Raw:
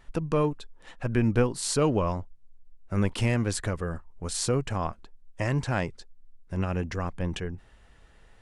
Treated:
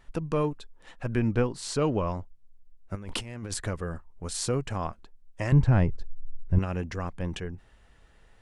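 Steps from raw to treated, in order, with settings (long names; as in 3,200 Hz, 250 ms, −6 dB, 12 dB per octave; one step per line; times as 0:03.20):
0:01.19–0:02.15: high-frequency loss of the air 53 metres
0:02.95–0:03.54: compressor whose output falls as the input rises −35 dBFS, ratio −1
0:05.52–0:06.59: RIAA equalisation playback
level −2 dB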